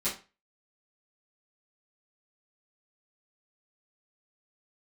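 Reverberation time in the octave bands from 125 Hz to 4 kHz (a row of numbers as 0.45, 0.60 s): 0.35, 0.30, 0.30, 0.30, 0.30, 0.30 s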